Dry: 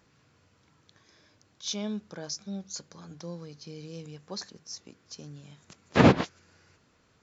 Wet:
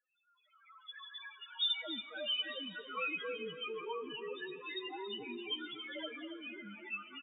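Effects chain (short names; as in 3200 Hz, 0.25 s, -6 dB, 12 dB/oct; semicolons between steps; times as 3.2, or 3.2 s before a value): sine-wave speech; recorder AGC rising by 43 dB/s; differentiator; loudest bins only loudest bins 1; echoes that change speed 0.363 s, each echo -3 st, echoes 2; feedback echo 0.279 s, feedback 31%, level -10.5 dB; plate-style reverb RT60 3.4 s, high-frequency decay 0.85×, DRR 18 dB; gain +4.5 dB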